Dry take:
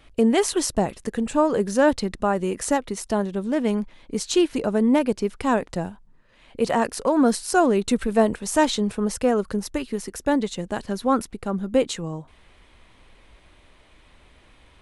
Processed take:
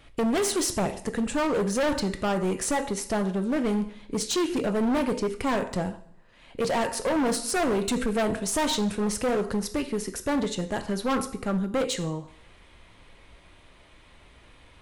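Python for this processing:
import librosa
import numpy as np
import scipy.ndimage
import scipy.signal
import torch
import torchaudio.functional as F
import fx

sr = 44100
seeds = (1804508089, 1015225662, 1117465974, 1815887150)

y = fx.rev_double_slope(x, sr, seeds[0], early_s=0.54, late_s=1.6, knee_db=-25, drr_db=7.5)
y = np.clip(10.0 ** (22.0 / 20.0) * y, -1.0, 1.0) / 10.0 ** (22.0 / 20.0)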